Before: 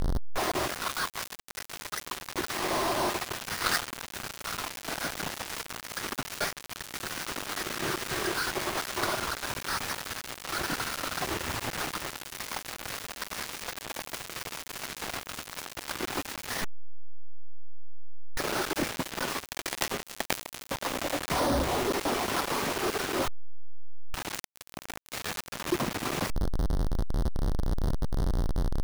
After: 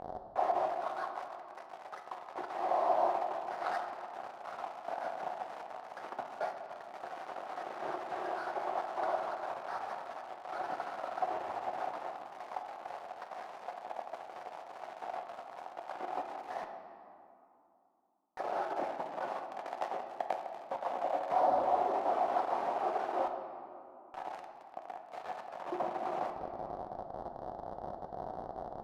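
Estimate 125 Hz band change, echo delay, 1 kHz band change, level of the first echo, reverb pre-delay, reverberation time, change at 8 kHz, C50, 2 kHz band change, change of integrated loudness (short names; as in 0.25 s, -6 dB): under -20 dB, none, +1.0 dB, none, 5 ms, 2.8 s, under -25 dB, 6.5 dB, -13.5 dB, -5.5 dB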